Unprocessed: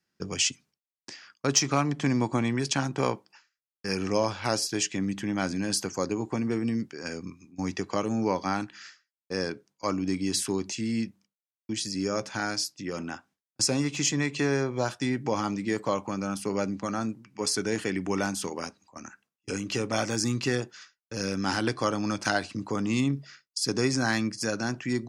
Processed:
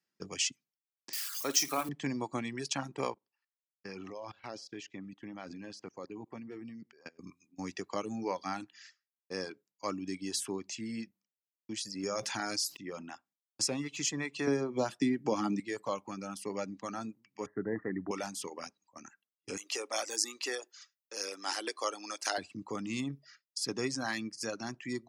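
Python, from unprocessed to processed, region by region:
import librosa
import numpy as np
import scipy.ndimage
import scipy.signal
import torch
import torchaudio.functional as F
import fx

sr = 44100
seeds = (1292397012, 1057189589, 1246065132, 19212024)

y = fx.chain(x, sr, fx.crossing_spikes(level_db=-22.5),
    fx.highpass(hz=250.0, slope=12),
    fx.room_flutter(wall_m=9.3, rt60_s=0.39), at=(1.13, 1.89))
y = fx.chain(y, sr, fx.level_steps(step_db=17),
    fx.air_absorb(metres=150.0),
    fx.echo_single(ms=99, db=-21.5), at=(3.14, 7.19))
y = fx.chain(y, sr, fx.high_shelf(hz=6500.0, db=5.5),
    fx.env_flatten(amount_pct=70), at=(12.03, 12.77))
y = fx.chain(y, sr, fx.highpass(hz=61.0, slope=12),
    fx.peak_eq(hz=250.0, db=9.0, octaves=1.7),
    fx.band_squash(depth_pct=70), at=(14.47, 15.6))
y = fx.chain(y, sr, fx.cheby1_lowpass(hz=2000.0, order=8),
    fx.low_shelf(hz=270.0, db=8.0), at=(17.46, 18.11))
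y = fx.chain(y, sr, fx.highpass(hz=370.0, slope=24),
    fx.high_shelf(hz=6100.0, db=11.0), at=(19.57, 22.38))
y = fx.dereverb_blind(y, sr, rt60_s=0.84)
y = fx.highpass(y, sr, hz=220.0, slope=6)
y = fx.notch(y, sr, hz=1500.0, q=13.0)
y = y * librosa.db_to_amplitude(-6.0)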